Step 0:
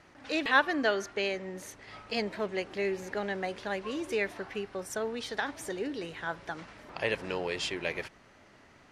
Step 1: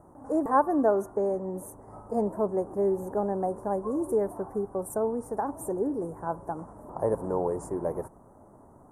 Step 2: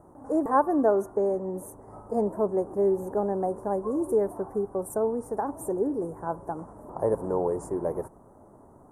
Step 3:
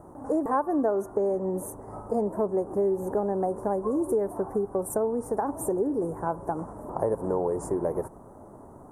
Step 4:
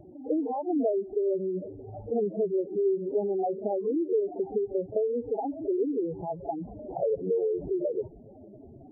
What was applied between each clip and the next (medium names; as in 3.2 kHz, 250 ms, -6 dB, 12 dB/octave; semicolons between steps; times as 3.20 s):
Chebyshev band-stop 980–9300 Hz, order 3; trim +7 dB
peaking EQ 400 Hz +2.5 dB 0.77 oct
compression 3:1, threshold -30 dBFS, peak gain reduction 11 dB; trim +5.5 dB
spectral contrast enhancement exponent 3.7; Chebyshev low-pass 770 Hz, order 5; reverse echo 39 ms -13.5 dB